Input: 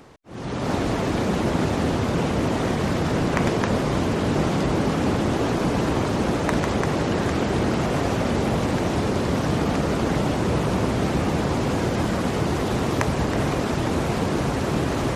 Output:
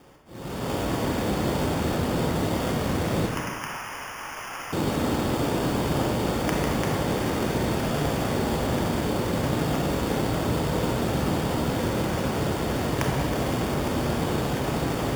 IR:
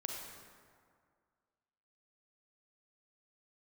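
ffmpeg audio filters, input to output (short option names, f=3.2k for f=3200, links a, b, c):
-filter_complex "[0:a]asettb=1/sr,asplit=3[a][b][c];[a]atrim=end=3.264[d];[b]atrim=start=3.26:end=4.73,asetpts=PTS-STARTPTS,afade=t=in:d=0.004:c=qsin,afade=t=out:st=1.466:d=0.004:c=qsin,highpass=f=1k:w=0.5412,highpass=f=1k:w=1.3066[e];[c]atrim=start=4.726[f];[d][e]acrossfade=d=0.004:c1=hsin:c2=qsin[g];[g][f]acrossfade=d=0.004:c1=qsin:c2=hsin,acrusher=samples=11:mix=1:aa=0.000001[h];[1:a]atrim=start_sample=2205,asetrate=61740,aresample=44100[i];[h][i]afir=irnorm=-1:irlink=0"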